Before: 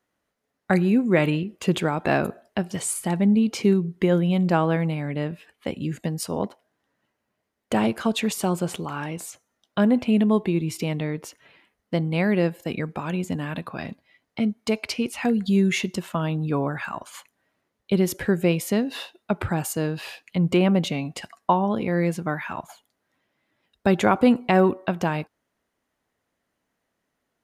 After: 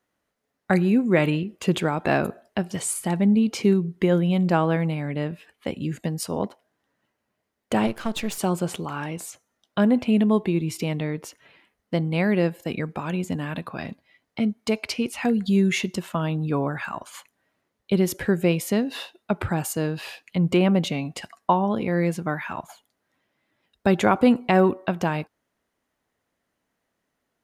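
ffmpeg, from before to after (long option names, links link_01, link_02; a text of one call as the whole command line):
ffmpeg -i in.wav -filter_complex "[0:a]asplit=3[link_01][link_02][link_03];[link_01]afade=type=out:start_time=7.86:duration=0.02[link_04];[link_02]aeval=exprs='if(lt(val(0),0),0.251*val(0),val(0))':channel_layout=same,afade=type=in:start_time=7.86:duration=0.02,afade=type=out:start_time=8.37:duration=0.02[link_05];[link_03]afade=type=in:start_time=8.37:duration=0.02[link_06];[link_04][link_05][link_06]amix=inputs=3:normalize=0" out.wav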